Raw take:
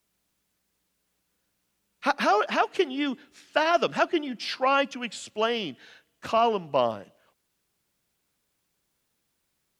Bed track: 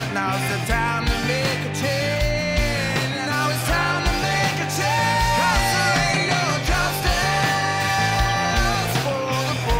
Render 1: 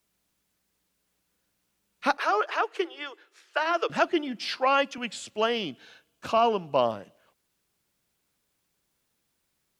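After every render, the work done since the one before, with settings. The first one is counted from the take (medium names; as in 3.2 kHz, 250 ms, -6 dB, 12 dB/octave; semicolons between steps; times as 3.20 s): 2.17–3.90 s: rippled Chebyshev high-pass 320 Hz, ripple 6 dB; 4.57–4.98 s: high-pass 270 Hz; 5.65–6.87 s: band-stop 1.9 kHz, Q 5.9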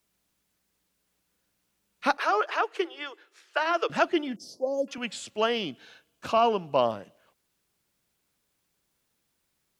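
4.36–4.88 s: elliptic band-stop 570–6100 Hz, stop band 60 dB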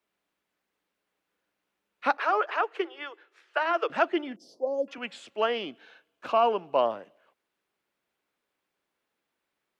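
three-band isolator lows -16 dB, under 260 Hz, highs -14 dB, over 3.2 kHz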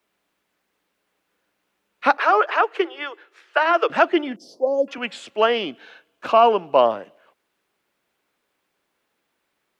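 trim +8.5 dB; peak limiter -3 dBFS, peak gain reduction 1.5 dB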